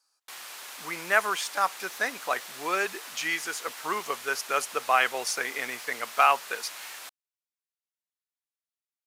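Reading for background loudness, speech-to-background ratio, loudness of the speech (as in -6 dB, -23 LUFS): -40.0 LUFS, 12.0 dB, -28.0 LUFS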